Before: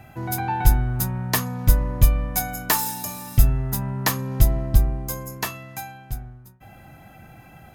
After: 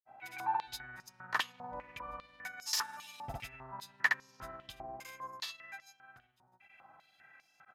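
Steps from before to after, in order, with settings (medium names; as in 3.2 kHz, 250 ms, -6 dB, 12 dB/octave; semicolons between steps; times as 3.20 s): granulator 100 ms, grains 20 per s, pitch spread up and down by 0 st; step-sequenced band-pass 5 Hz 810–5300 Hz; trim +1 dB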